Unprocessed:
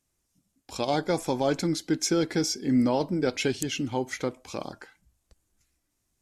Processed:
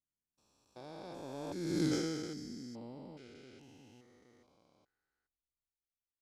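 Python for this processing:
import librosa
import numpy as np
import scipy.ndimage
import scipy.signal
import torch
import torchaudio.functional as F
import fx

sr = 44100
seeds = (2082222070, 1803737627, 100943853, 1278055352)

y = fx.spec_steps(x, sr, hold_ms=400)
y = fx.doppler_pass(y, sr, speed_mps=16, closest_m=1.5, pass_at_s=1.84)
y = y * librosa.db_to_amplitude(1.5)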